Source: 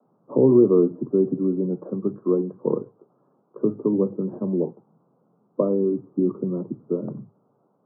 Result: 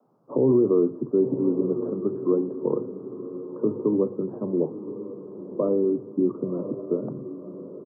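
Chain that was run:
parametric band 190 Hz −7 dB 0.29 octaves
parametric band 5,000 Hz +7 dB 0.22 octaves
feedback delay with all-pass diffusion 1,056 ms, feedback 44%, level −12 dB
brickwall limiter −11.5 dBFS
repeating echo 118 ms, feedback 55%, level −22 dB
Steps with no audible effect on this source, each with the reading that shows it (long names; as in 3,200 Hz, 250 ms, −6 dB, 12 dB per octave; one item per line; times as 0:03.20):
parametric band 5,000 Hz: nothing at its input above 1,200 Hz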